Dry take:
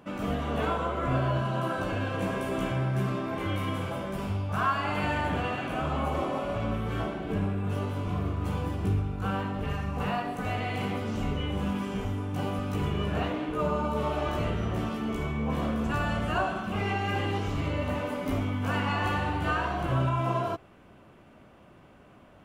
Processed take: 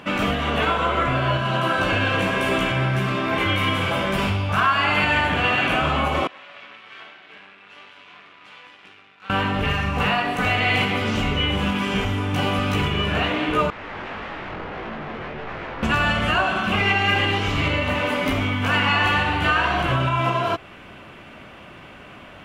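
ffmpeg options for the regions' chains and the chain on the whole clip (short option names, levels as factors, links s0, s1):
-filter_complex "[0:a]asettb=1/sr,asplit=3[s0][s1][s2];[s0]atrim=end=6.274[s3];[s1]atrim=start=6.27:end=9.3,asetpts=PTS-STARTPTS,afade=t=in:d=0.004:c=qsin,afade=t=out:st=3.026:d=0.004:c=qsin,aderivative,aeval=exprs='max(val(0),0)':c=same,highpass=140,lowpass=2600[s4];[s2]atrim=start=9.296[s5];[s3][s4]acrossfade=d=0.004:c1=hsin:c2=qsin[s6];[s6][s5]acrossfade=d=0.004:c1=qsin:c2=hsin,asettb=1/sr,asplit=3[s7][s8][s9];[s7]atrim=end=13.704[s10];[s8]atrim=start=13.7:end=15.83,asetpts=PTS-STARTPTS,afade=t=in:d=0.004:c=qsin,afade=t=out:st=2.126:d=0.004:c=qsin,aeval=exprs='0.0211*(abs(mod(val(0)/0.0211+3,4)-2)-1)':c=same,adynamicsmooth=sensitivity=2:basefreq=890,flanger=delay=18:depth=4:speed=1.7[s11];[s9]atrim=start=15.826[s12];[s10][s11]acrossfade=d=0.004:c1=hsin:c2=qsin[s13];[s13][s12]acrossfade=d=0.004:c1=qsin:c2=hsin,alimiter=limit=0.0668:level=0:latency=1:release=354,equalizer=f=2600:t=o:w=2.1:g=11.5,volume=2.82"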